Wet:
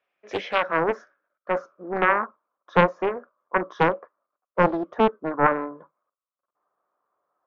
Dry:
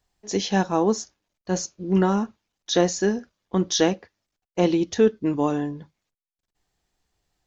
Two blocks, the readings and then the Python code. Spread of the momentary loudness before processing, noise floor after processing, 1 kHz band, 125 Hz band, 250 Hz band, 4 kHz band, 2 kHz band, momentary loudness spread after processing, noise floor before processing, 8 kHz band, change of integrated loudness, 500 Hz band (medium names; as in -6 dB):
13 LU, under -85 dBFS, +6.5 dB, -5.0 dB, -7.0 dB, -9.0 dB, +8.5 dB, 13 LU, under -85 dBFS, no reading, -0.5 dB, -1.0 dB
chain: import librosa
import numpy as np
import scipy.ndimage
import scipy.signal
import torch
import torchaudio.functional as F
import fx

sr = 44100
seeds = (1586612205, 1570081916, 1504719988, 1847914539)

y = fx.cabinet(x, sr, low_hz=440.0, low_slope=12, high_hz=5700.0, hz=(570.0, 840.0, 1300.0, 1900.0, 2800.0, 4300.0), db=(9, -8, 6, -5, -6, -10))
y = fx.filter_sweep_lowpass(y, sr, from_hz=2500.0, to_hz=1100.0, start_s=0.12, end_s=1.98, q=4.8)
y = fx.doppler_dist(y, sr, depth_ms=0.64)